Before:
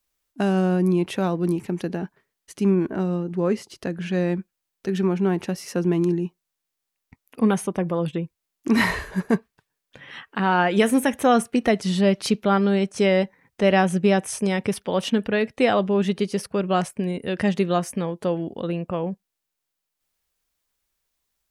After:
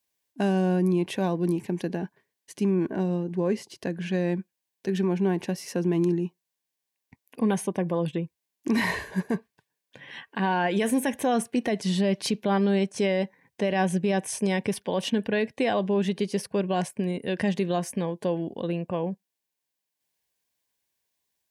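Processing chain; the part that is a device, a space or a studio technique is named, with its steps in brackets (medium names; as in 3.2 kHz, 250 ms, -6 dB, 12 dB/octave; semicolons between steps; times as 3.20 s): PA system with an anti-feedback notch (high-pass 100 Hz 12 dB/octave; Butterworth band-stop 1.3 kHz, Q 4.7; peak limiter -14 dBFS, peak gain reduction 8 dB); trim -2 dB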